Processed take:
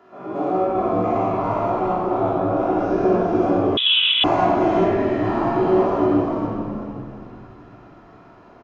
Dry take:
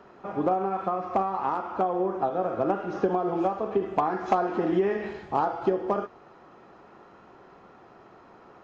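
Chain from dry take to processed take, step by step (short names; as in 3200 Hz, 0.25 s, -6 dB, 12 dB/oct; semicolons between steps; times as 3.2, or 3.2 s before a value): spectral dilation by 0.24 s; HPF 120 Hz; doubler 16 ms -4 dB; on a send: frequency-shifting echo 0.404 s, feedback 31%, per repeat -81 Hz, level -3 dB; on the sum: shoebox room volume 2700 m³, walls mixed, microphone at 3.1 m; 3.77–4.24 inverted band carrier 3700 Hz; gain -9 dB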